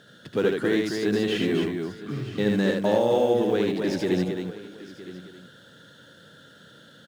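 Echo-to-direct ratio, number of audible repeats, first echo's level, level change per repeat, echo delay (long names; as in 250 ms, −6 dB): −0.5 dB, 5, −3.0 dB, repeats not evenly spaced, 77 ms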